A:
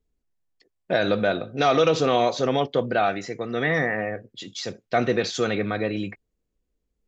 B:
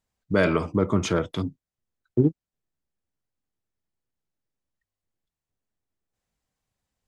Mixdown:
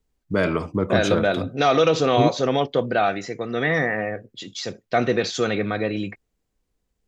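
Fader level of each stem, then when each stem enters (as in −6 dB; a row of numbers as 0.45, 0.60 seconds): +1.5, −0.5 decibels; 0.00, 0.00 seconds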